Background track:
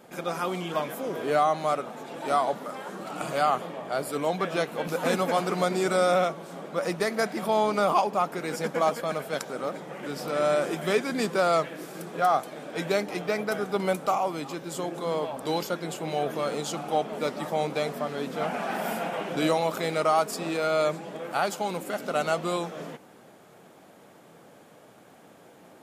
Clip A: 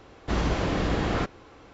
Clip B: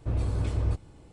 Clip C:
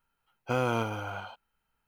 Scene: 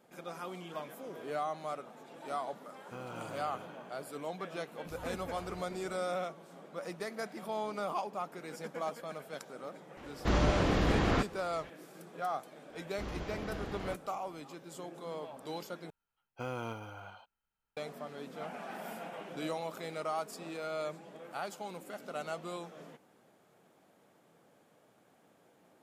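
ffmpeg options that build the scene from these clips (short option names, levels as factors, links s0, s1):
-filter_complex "[3:a]asplit=2[s0][s1];[1:a]asplit=2[s2][s3];[0:a]volume=0.224[s4];[s0]asplit=9[s5][s6][s7][s8][s9][s10][s11][s12][s13];[s6]adelay=202,afreqshift=41,volume=0.708[s14];[s7]adelay=404,afreqshift=82,volume=0.412[s15];[s8]adelay=606,afreqshift=123,volume=0.237[s16];[s9]adelay=808,afreqshift=164,volume=0.138[s17];[s10]adelay=1010,afreqshift=205,volume=0.0804[s18];[s11]adelay=1212,afreqshift=246,volume=0.0462[s19];[s12]adelay=1414,afreqshift=287,volume=0.0269[s20];[s13]adelay=1616,afreqshift=328,volume=0.0157[s21];[s5][s14][s15][s16][s17][s18][s19][s20][s21]amix=inputs=9:normalize=0[s22];[2:a]acompressor=threshold=0.0112:ratio=6:attack=3.2:release=140:knee=1:detection=peak[s23];[s4]asplit=2[s24][s25];[s24]atrim=end=15.904[s26];[s1]atrim=end=1.87,asetpts=PTS-STARTPTS,volume=0.282[s27];[s25]atrim=start=17.766[s28];[s22]atrim=end=1.87,asetpts=PTS-STARTPTS,volume=0.133,afade=t=in:d=0.004:c=hsin,afade=t=out:st=1.866:d=0.004:c=hsin,adelay=2420[s29];[s23]atrim=end=1.12,asetpts=PTS-STARTPTS,volume=0.299,afade=t=in:d=0.004:c=hsin,afade=t=out:st=1.116:d=0.004:c=hsin,adelay=213885S[s30];[s2]atrim=end=1.73,asetpts=PTS-STARTPTS,volume=0.75,afade=t=in:d=0.004:c=hsin,afade=t=out:st=1.726:d=0.004:c=hsin,adelay=9970[s31];[s3]atrim=end=1.73,asetpts=PTS-STARTPTS,volume=0.168,afade=t=in:d=0.004:c=hsin,afade=t=out:st=1.726:d=0.004:c=hsin,adelay=12700[s32];[s26][s27]acrossfade=d=0.004:c1=hsin:c2=hsin[s33];[s33][s28]acrossfade=d=0.004:c1=hsin:c2=hsin[s34];[s34][s29][s30][s31][s32]amix=inputs=5:normalize=0"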